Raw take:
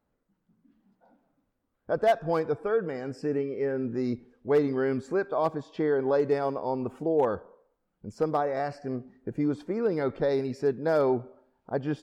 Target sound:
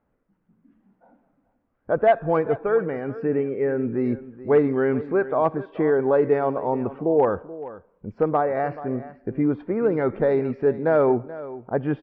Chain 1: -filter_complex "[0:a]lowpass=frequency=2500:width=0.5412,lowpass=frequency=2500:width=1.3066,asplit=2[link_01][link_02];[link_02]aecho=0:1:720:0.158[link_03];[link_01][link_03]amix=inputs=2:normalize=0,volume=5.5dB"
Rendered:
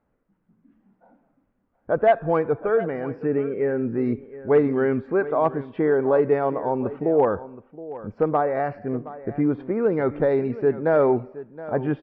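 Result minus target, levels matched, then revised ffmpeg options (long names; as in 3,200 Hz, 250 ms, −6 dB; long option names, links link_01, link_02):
echo 289 ms late
-filter_complex "[0:a]lowpass=frequency=2500:width=0.5412,lowpass=frequency=2500:width=1.3066,asplit=2[link_01][link_02];[link_02]aecho=0:1:431:0.158[link_03];[link_01][link_03]amix=inputs=2:normalize=0,volume=5.5dB"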